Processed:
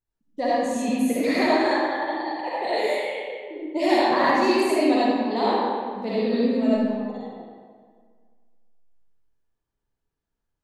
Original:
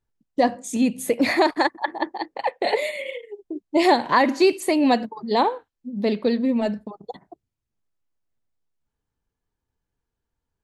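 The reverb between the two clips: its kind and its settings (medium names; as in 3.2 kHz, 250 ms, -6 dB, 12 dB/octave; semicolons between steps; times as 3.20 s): algorithmic reverb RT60 1.8 s, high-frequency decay 0.7×, pre-delay 25 ms, DRR -9 dB; trim -10 dB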